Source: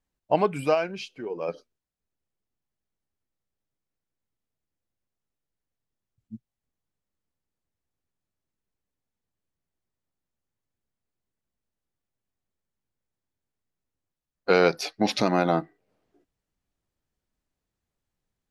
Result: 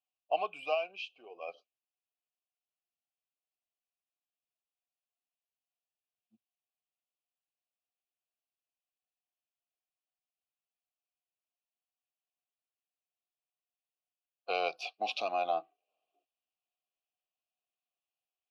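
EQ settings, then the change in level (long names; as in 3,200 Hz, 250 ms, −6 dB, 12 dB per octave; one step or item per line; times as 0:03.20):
formant filter a
high-pass filter 380 Hz 6 dB per octave
high shelf with overshoot 2,300 Hz +8 dB, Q 3
0.0 dB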